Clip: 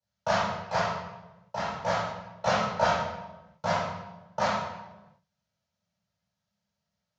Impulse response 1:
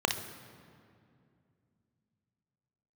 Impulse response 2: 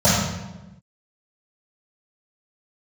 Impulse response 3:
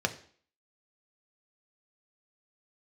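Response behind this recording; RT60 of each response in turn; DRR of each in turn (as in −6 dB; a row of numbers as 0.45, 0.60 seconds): 2; 2.4, 1.1, 0.50 seconds; 4.0, −17.5, 5.5 decibels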